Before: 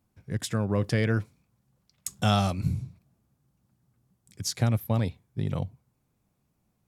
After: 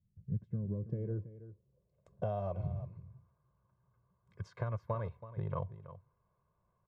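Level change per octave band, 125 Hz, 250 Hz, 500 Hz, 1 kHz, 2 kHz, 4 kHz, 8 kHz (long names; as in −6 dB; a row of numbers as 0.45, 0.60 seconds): −10.0 dB, −13.5 dB, −8.0 dB, −11.0 dB, −20.0 dB, below −30 dB, below −35 dB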